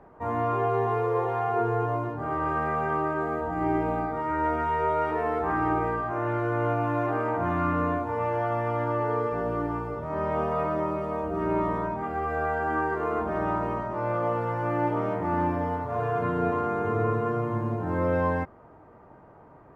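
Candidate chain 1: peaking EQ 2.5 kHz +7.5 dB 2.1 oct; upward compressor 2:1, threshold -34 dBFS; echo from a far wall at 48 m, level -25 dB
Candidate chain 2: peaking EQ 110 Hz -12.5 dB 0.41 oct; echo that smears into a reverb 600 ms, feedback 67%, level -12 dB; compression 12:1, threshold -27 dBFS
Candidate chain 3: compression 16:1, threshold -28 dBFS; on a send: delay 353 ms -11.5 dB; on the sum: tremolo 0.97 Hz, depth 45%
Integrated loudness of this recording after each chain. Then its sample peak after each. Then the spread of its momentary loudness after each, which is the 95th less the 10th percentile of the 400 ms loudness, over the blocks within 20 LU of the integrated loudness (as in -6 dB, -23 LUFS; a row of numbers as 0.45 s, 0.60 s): -25.5 LUFS, -31.5 LUFS, -34.5 LUFS; -12.0 dBFS, -19.5 dBFS, -21.0 dBFS; 5 LU, 1 LU, 4 LU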